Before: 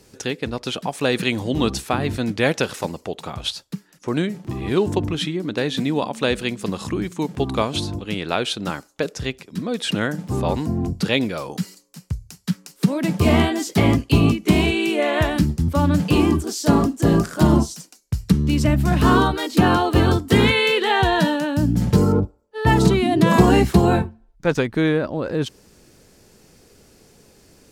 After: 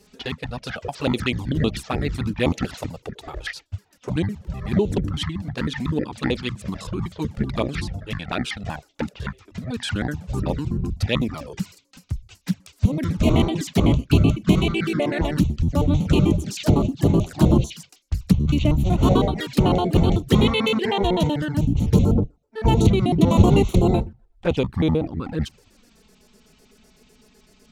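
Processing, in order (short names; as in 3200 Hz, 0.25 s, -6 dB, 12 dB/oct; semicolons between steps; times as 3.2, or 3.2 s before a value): trilling pitch shifter -11.5 st, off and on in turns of 63 ms; envelope flanger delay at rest 5 ms, full sweep at -16 dBFS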